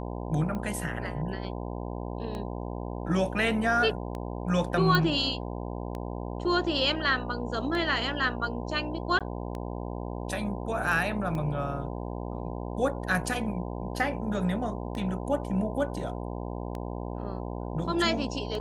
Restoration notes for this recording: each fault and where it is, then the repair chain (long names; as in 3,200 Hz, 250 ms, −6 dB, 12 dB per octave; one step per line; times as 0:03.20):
mains buzz 60 Hz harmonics 17 −35 dBFS
scratch tick 33 1/3 rpm −23 dBFS
0:04.95: click −12 dBFS
0:09.19–0:09.21: drop-out 17 ms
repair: click removal
hum removal 60 Hz, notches 17
repair the gap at 0:09.19, 17 ms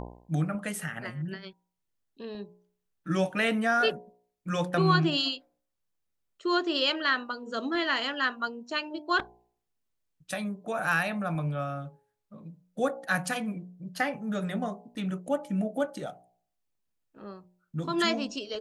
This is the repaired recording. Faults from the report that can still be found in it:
none of them is left